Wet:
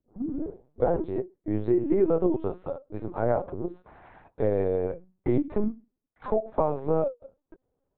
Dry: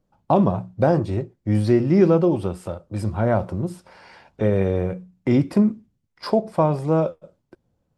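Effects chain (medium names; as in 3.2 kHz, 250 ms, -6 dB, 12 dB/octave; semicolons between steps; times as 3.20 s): tape start-up on the opening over 0.90 s; high-pass 250 Hz 24 dB/octave; peaking EQ 3.1 kHz -14.5 dB 1.7 oct; compression 3:1, threshold -20 dBFS, peak gain reduction 6.5 dB; LPC vocoder at 8 kHz pitch kept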